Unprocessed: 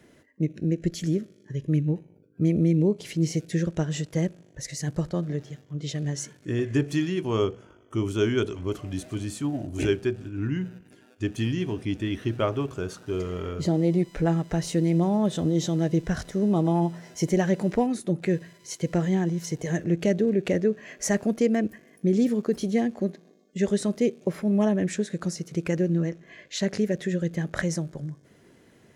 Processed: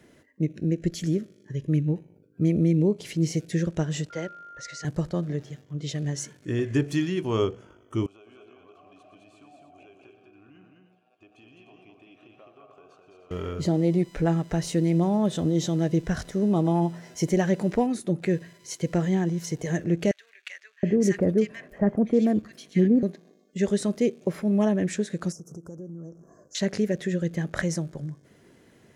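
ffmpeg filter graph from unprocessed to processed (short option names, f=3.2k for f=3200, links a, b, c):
-filter_complex "[0:a]asettb=1/sr,asplit=3[a][b][c];[a]atrim=end=4.104[d];[b]atrim=start=4.1:end=4.85,asetpts=PTS-STARTPTS,afade=t=in:d=0.004:c=qsin,afade=t=out:st=0.746:d=0.004:c=qsin,lowpass=f=9.6k:w=0.5412,lowpass=f=9.6k:w=1.3066,acrossover=split=380 6000:gain=0.2 1 0.141[e][f][g];[e][f][g]amix=inputs=3:normalize=0,aeval=exprs='val(0)+0.00794*sin(2*PI*1400*n/s)':c=same[h];[c]atrim=start=4.846[i];[d][h]acrossfade=d=0.004:c1=hsin:c2=qsin[j];[j][i]acrossfade=d=0.004:c1=qsin:c2=hsin,asettb=1/sr,asplit=3[k][l][m];[k]atrim=end=8.064[n];[l]atrim=start=8.06:end=13.31,asetpts=PTS-STARTPTS,afade=t=in:d=0.004:c=qsin,afade=t=out:st=5.246:d=0.004:c=qsin,asplit=3[o][p][q];[o]bandpass=f=730:t=q:w=8,volume=0dB[r];[p]bandpass=f=1.09k:t=q:w=8,volume=-6dB[s];[q]bandpass=f=2.44k:t=q:w=8,volume=-9dB[t];[r][s][t]amix=inputs=3:normalize=0,acompressor=threshold=-50dB:ratio=6:attack=3.2:release=140:knee=1:detection=peak,aecho=1:1:120|209|303:0.211|0.668|0.299,atrim=end_sample=231525[u];[m]atrim=start=13.306[v];[n][u]acrossfade=d=0.004:c1=hsin:c2=qsin[w];[w][v]acrossfade=d=0.004:c1=qsin:c2=hsin,asettb=1/sr,asplit=3[x][y][z];[x]atrim=end=20.114[aa];[y]atrim=start=20.11:end=23.03,asetpts=PTS-STARTPTS,afade=t=in:d=0.004:c=qsin,afade=t=out:st=2.916:d=0.004:c=qsin,bass=f=250:g=4,treble=f=4k:g=-8,acrossover=split=1500[ab][ac];[ab]adelay=720[ad];[ad][ac]amix=inputs=2:normalize=0,atrim=end_sample=128772[ae];[z]atrim=start=23.026[af];[aa][ae]acrossfade=d=0.004:c1=hsin:c2=qsin[ag];[ag][af]acrossfade=d=0.004:c1=qsin:c2=hsin,asettb=1/sr,asplit=3[ah][ai][aj];[ah]atrim=end=25.324[ak];[ai]atrim=start=25.32:end=26.55,asetpts=PTS-STARTPTS,afade=t=in:d=0.004:c=qsin,afade=t=out:st=1.226:d=0.004:c=qsin,acompressor=threshold=-39dB:ratio=4:attack=3.2:release=140:knee=1:detection=peak,asuperstop=centerf=2800:order=12:qfactor=0.69[al];[aj]atrim=start=26.546[am];[ak][al]acrossfade=d=0.004:c1=hsin:c2=qsin[an];[an][am]acrossfade=d=0.004:c1=qsin:c2=hsin"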